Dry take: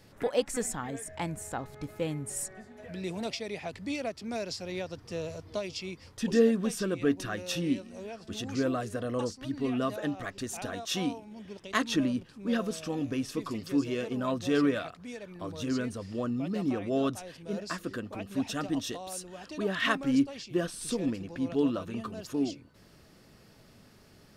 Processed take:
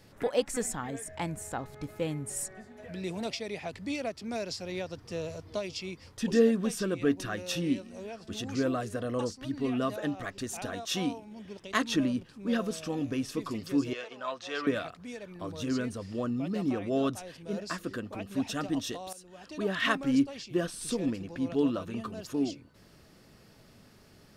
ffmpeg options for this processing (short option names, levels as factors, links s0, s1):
-filter_complex "[0:a]asettb=1/sr,asplit=3[s0][s1][s2];[s0]atrim=end=13.934[s3];[s1]atrim=start=13.93:end=14.67,asetpts=PTS-STARTPTS,afade=t=in:d=0.004:c=qsin,afade=t=out:st=0.736:d=0.004:c=qsin,acrossover=split=560 6900:gain=0.0708 1 0.0891[s4][s5][s6];[s4][s5][s6]amix=inputs=3:normalize=0[s7];[s2]atrim=start=14.666[s8];[s3][s7]acrossfade=d=0.004:c1=hsin:c2=qsin[s9];[s9][s8]acrossfade=d=0.004:c1=qsin:c2=hsin,asplit=2[s10][s11];[s10]atrim=end=19.13,asetpts=PTS-STARTPTS,afade=t=out:st=19.126:d=0.004:c=hsin:silence=0.211349[s12];[s11]atrim=start=19.13,asetpts=PTS-STARTPTS,afade=t=in:d=0.52:silence=0.211349[s13];[s12][s13]concat=n=2:v=0:a=1"